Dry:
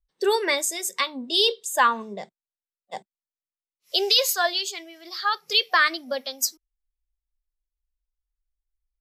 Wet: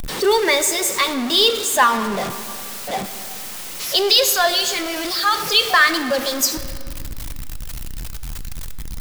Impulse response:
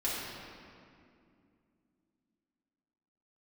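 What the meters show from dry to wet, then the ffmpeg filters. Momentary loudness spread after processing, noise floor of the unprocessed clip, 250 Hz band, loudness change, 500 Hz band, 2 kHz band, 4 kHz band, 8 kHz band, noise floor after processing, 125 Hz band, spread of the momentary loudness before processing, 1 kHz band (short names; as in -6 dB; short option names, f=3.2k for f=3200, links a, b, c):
19 LU, under -85 dBFS, +11.0 dB, +5.5 dB, +7.0 dB, +6.0 dB, +6.0 dB, +8.0 dB, -31 dBFS, n/a, 19 LU, +6.0 dB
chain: -filter_complex "[0:a]aeval=exprs='val(0)+0.5*0.0668*sgn(val(0))':c=same,asplit=2[a][b];[1:a]atrim=start_sample=2205,lowshelf=f=220:g=-8.5[c];[b][c]afir=irnorm=-1:irlink=0,volume=-14dB[d];[a][d]amix=inputs=2:normalize=0,volume=2dB"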